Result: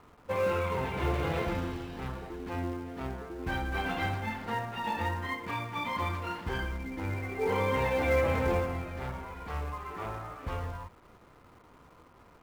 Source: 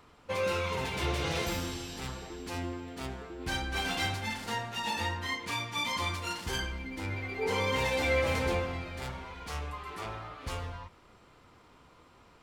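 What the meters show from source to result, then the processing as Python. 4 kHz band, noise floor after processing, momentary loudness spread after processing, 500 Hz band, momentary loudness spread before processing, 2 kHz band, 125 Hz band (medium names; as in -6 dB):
-8.5 dB, -57 dBFS, 11 LU, +2.5 dB, 12 LU, -1.5 dB, +2.5 dB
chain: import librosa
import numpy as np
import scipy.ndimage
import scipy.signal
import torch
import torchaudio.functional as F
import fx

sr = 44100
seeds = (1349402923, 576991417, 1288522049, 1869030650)

p1 = scipy.signal.sosfilt(scipy.signal.butter(2, 1800.0, 'lowpass', fs=sr, output='sos'), x)
p2 = fx.quant_companded(p1, sr, bits=4)
y = p1 + (p2 * librosa.db_to_amplitude(-10.0))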